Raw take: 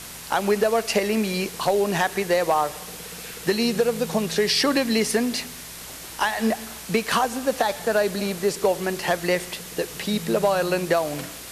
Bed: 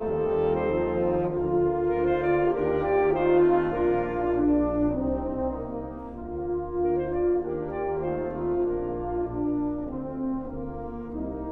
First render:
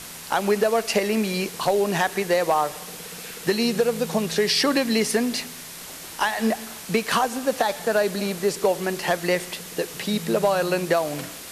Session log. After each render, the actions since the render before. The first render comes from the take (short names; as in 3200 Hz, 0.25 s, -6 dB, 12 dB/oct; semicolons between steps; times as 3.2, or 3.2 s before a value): de-hum 60 Hz, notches 2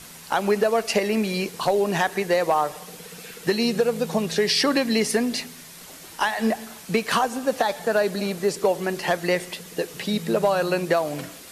denoiser 6 dB, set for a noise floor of -39 dBFS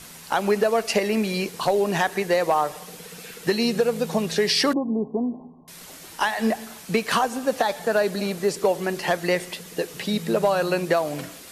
4.73–5.68 rippled Chebyshev low-pass 1100 Hz, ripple 6 dB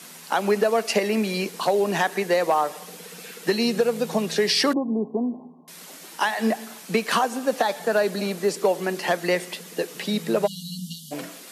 steep high-pass 170 Hz; 10.47–11.12 spectral delete 240–2800 Hz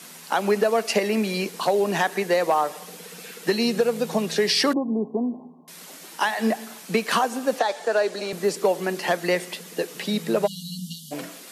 7.59–8.33 Chebyshev band-pass 390–7400 Hz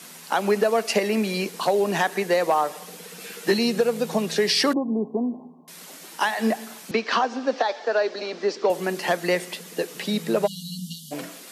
3.19–3.59 doubler 15 ms -2.5 dB; 6.91–8.7 elliptic band-pass 240–5400 Hz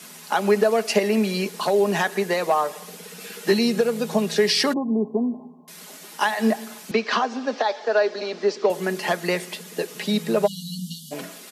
comb 4.8 ms, depth 40%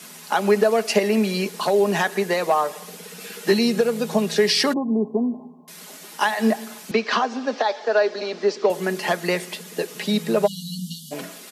gain +1 dB